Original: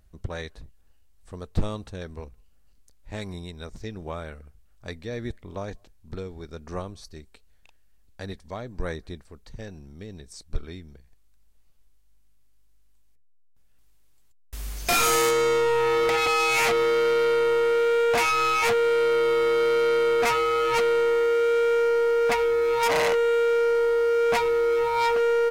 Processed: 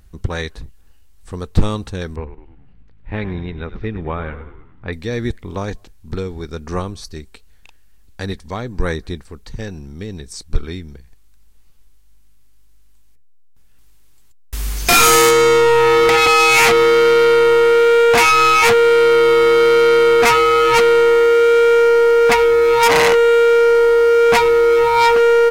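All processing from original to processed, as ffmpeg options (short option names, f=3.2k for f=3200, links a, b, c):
-filter_complex "[0:a]asettb=1/sr,asplit=3[a][b][c];[a]atrim=end=2.164[d];[b]atrim=start=2.16:end=4.93,asetpts=PTS-STARTPTS,afade=t=in:d=0.004:c=qsin,afade=t=out:st=2.766:d=0.004:c=qsin,lowpass=f=2.8k:w=0.5412,lowpass=f=2.8k:w=1.3066,asplit=7[e][f][g][h][i][j][k];[f]adelay=102,afreqshift=-53,volume=-12.5dB[l];[g]adelay=204,afreqshift=-106,volume=-17.9dB[m];[h]adelay=306,afreqshift=-159,volume=-23.2dB[n];[i]adelay=408,afreqshift=-212,volume=-28.6dB[o];[j]adelay=510,afreqshift=-265,volume=-33.9dB[p];[k]adelay=612,afreqshift=-318,volume=-39.3dB[q];[e][l][m][n][o][p][q]amix=inputs=7:normalize=0,atrim=end_sample=122157[r];[c]atrim=start=4.926[s];[d][r]acrossfade=d=0.004:c1=hsin:c2=qsin[t];[t][s]acrossfade=d=0.004:c1=qsin:c2=hsin,equalizer=f=620:w=4.4:g=-8,acontrast=77,volume=4.5dB"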